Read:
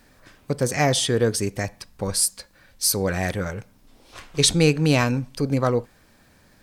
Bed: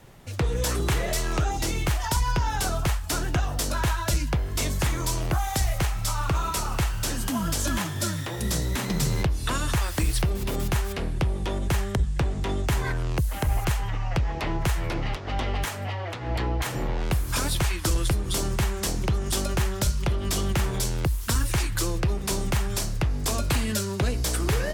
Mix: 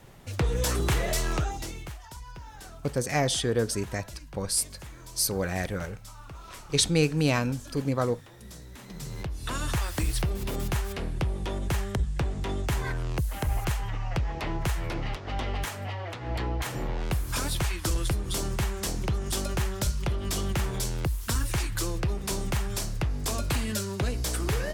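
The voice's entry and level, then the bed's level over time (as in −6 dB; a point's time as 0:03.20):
2.35 s, −5.5 dB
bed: 0:01.31 −1 dB
0:02.06 −19 dB
0:08.73 −19 dB
0:09.64 −3.5 dB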